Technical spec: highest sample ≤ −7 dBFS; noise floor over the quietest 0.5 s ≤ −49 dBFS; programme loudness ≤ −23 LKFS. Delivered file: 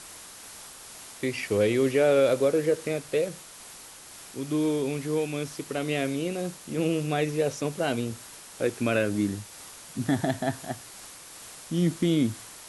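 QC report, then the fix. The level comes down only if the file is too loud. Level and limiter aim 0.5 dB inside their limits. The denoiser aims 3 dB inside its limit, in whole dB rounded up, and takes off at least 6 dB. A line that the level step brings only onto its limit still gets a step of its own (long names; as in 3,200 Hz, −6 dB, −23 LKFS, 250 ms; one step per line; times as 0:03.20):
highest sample −12.0 dBFS: in spec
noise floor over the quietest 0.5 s −46 dBFS: out of spec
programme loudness −27.5 LKFS: in spec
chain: broadband denoise 6 dB, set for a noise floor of −46 dBFS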